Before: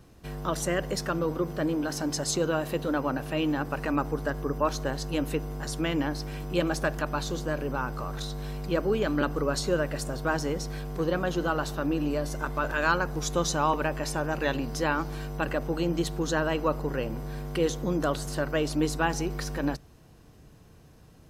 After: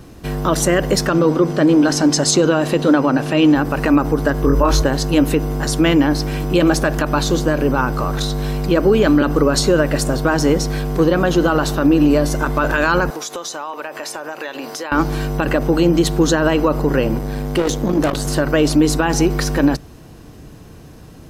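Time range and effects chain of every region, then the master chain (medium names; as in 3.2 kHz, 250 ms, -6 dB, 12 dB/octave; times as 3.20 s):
1.07–3.55 s: low-pass 7.6 kHz + treble shelf 5.3 kHz +5 dB + hum notches 50/100 Hz
4.42–4.82 s: peaking EQ 62 Hz +6.5 dB 1.1 oct + doubling 22 ms -2 dB
13.10–14.92 s: high-pass 540 Hz + compression, threshold -38 dBFS
17.18–18.25 s: band-stop 1.4 kHz, Q 13 + hard clipper -25.5 dBFS + transformer saturation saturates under 120 Hz
whole clip: peaking EQ 290 Hz +4 dB 0.77 oct; loudness maximiser +17.5 dB; trim -4 dB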